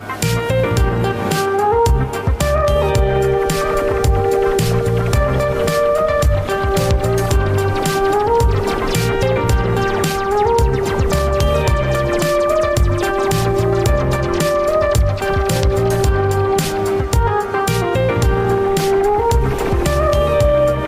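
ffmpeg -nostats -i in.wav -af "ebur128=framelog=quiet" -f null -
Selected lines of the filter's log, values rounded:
Integrated loudness:
  I:         -16.1 LUFS
  Threshold: -26.1 LUFS
Loudness range:
  LRA:         0.5 LU
  Threshold: -36.1 LUFS
  LRA low:   -16.4 LUFS
  LRA high:  -15.9 LUFS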